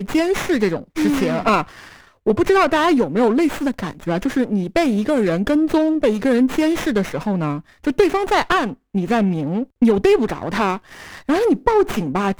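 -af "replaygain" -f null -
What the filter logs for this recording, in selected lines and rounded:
track_gain = -1.2 dB
track_peak = 0.548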